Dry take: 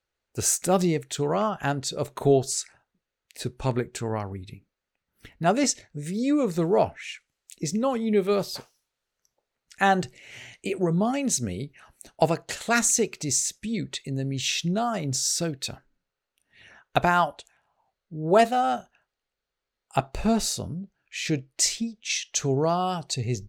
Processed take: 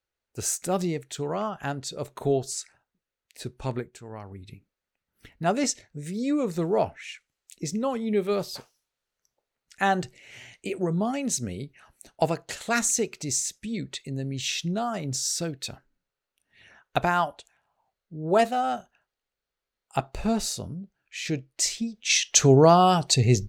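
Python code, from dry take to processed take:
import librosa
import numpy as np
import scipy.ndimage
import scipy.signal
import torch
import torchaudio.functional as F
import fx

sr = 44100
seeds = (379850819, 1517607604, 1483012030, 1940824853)

y = fx.gain(x, sr, db=fx.line((3.78, -4.5), (4.01, -14.0), (4.51, -2.5), (21.73, -2.5), (22.24, 8.0)))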